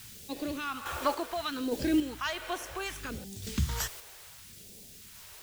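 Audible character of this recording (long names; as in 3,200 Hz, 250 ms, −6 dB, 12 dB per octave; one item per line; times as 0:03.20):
a quantiser's noise floor 8 bits, dither triangular
phaser sweep stages 2, 0.68 Hz, lowest notch 170–1,200 Hz
sample-and-hold tremolo 3.5 Hz, depth 55%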